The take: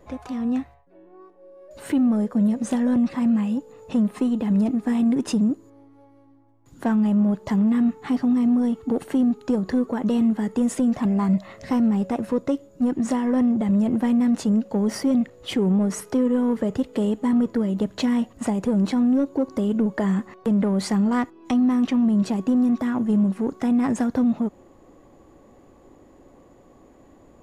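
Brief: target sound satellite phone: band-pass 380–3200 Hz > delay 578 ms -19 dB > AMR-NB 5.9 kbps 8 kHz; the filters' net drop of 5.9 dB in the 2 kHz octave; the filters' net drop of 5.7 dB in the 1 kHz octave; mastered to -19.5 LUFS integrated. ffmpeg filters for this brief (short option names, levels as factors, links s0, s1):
-af "highpass=380,lowpass=3200,equalizer=f=1000:t=o:g=-6.5,equalizer=f=2000:t=o:g=-4.5,aecho=1:1:578:0.112,volume=3.76" -ar 8000 -c:a libopencore_amrnb -b:a 5900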